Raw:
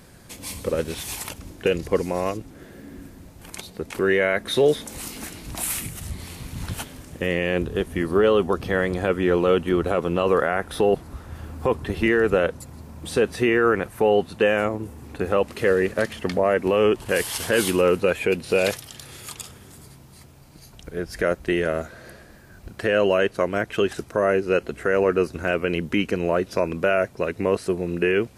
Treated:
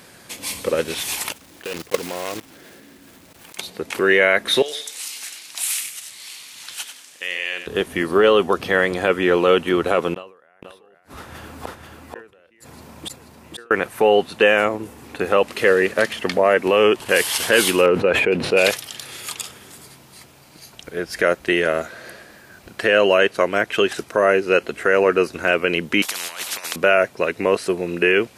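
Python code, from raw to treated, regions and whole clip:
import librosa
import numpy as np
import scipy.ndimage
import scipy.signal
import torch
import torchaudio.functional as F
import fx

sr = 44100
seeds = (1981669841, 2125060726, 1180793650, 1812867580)

y = fx.chain(x, sr, fx.block_float(bits=3),
    fx.level_steps(step_db=16), at=(1.32, 3.59))
y = fx.chain(y, sr, fx.bandpass_q(hz=5900.0, q=0.64),
    fx.echo_feedback(ms=94, feedback_pct=27, wet_db=-9.0), at=(4.62, 7.67))
y = fx.chain(y, sr, fx.gate_flip(shuts_db=-24.0, range_db=-39),
    fx.echo_single(ms=484, db=-4.0),
    fx.sustainer(db_per_s=110.0), at=(10.14, 13.71))
y = fx.chain(y, sr, fx.lowpass(hz=1000.0, slope=6),
    fx.sustainer(db_per_s=55.0), at=(17.86, 18.57))
y = fx.chain(y, sr, fx.highpass(hz=610.0, slope=12),
    fx.over_compress(threshold_db=-30.0, ratio=-0.5),
    fx.spectral_comp(ratio=10.0), at=(26.02, 26.76))
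y = fx.highpass(y, sr, hz=370.0, slope=6)
y = fx.peak_eq(y, sr, hz=2800.0, db=3.5, octaves=1.6)
y = y * librosa.db_to_amplitude(5.5)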